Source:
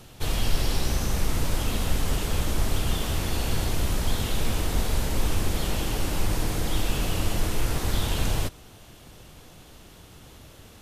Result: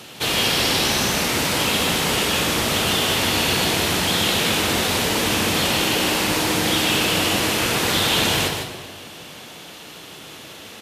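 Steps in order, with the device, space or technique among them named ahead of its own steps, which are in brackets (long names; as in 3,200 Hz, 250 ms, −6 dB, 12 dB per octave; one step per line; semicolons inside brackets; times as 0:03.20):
PA in a hall (high-pass filter 190 Hz 12 dB per octave; parametric band 2,800 Hz +6.5 dB 1.8 octaves; single-tap delay 151 ms −6.5 dB; convolution reverb RT60 1.6 s, pre-delay 29 ms, DRR 6.5 dB)
level +8 dB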